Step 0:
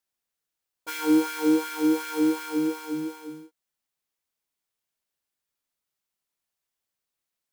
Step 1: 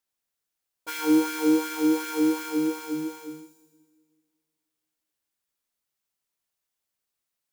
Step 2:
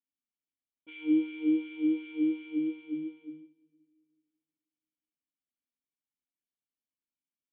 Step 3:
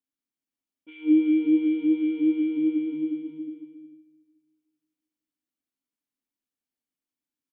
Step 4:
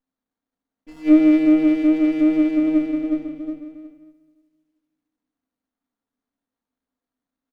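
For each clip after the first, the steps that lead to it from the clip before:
delay with a high-pass on its return 81 ms, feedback 70%, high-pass 5,600 Hz, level −6 dB; on a send at −20 dB: convolution reverb RT60 2.1 s, pre-delay 25 ms
dynamic equaliser 2,800 Hz, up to +4 dB, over −44 dBFS, Q 0.76; formant resonators in series i
parametric band 280 Hz +8 dB 1 octave; bouncing-ball delay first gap 190 ms, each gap 0.8×, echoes 5; level −1 dB
comb filter 4.3 ms, depth 63%; rectangular room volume 470 cubic metres, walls furnished, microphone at 2.1 metres; windowed peak hold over 17 samples; level +2.5 dB

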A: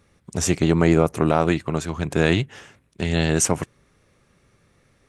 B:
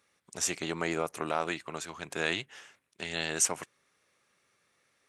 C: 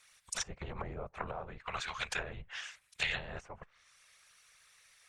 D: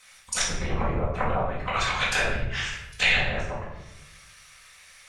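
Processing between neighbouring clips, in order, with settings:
high-pass filter 1,200 Hz 6 dB per octave; level −5 dB
random phases in short frames; treble cut that deepens with the level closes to 410 Hz, closed at −29 dBFS; guitar amp tone stack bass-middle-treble 10-0-10; level +12 dB
rectangular room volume 320 cubic metres, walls mixed, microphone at 2 metres; level +7.5 dB

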